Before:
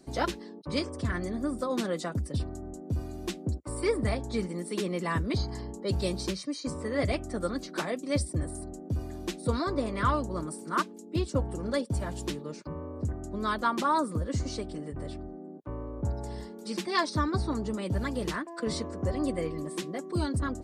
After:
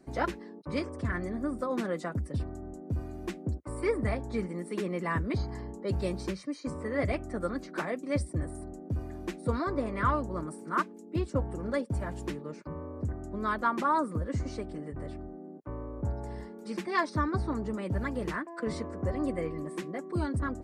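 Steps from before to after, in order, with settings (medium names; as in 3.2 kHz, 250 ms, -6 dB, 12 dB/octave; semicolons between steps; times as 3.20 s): resonant high shelf 2.7 kHz -7 dB, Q 1.5; trim -1.5 dB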